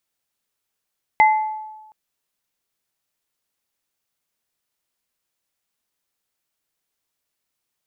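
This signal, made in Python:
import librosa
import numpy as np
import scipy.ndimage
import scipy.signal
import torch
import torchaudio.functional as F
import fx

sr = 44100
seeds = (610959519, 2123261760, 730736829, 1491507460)

y = fx.additive_free(sr, length_s=0.72, hz=864.0, level_db=-9, upper_db=(-4.0,), decay_s=1.16, upper_decays_s=(0.49,), upper_hz=(2060.0,))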